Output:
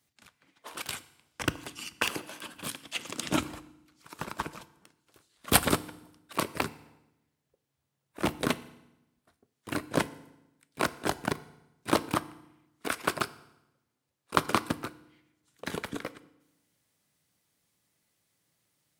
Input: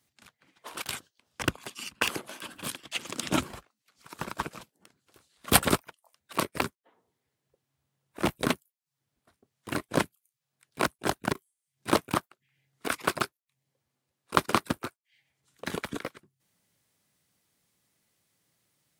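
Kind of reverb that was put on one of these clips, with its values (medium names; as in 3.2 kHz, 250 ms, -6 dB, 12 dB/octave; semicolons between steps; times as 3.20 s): FDN reverb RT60 0.91 s, low-frequency decay 1.25×, high-frequency decay 0.9×, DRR 14.5 dB; trim -1.5 dB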